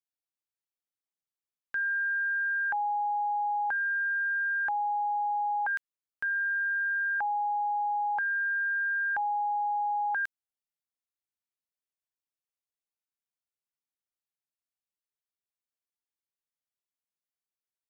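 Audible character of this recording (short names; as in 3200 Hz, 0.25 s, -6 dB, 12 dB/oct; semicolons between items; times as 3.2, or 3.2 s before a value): noise floor -95 dBFS; spectral tilt -2.0 dB/oct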